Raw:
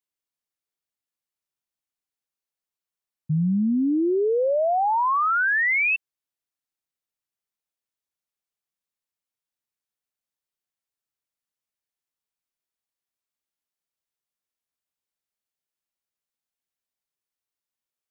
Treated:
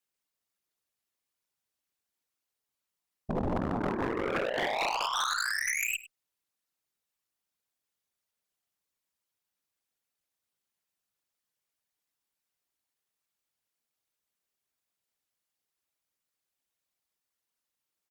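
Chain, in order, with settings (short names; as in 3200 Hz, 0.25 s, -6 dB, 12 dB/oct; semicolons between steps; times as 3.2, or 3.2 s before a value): whisperiser; added harmonics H 3 -19 dB, 4 -31 dB, 6 -37 dB, 7 -13 dB, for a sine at -11 dBFS; negative-ratio compressor -26 dBFS, ratio -0.5; hard clip -25 dBFS, distortion -6 dB; on a send: echo 0.101 s -17.5 dB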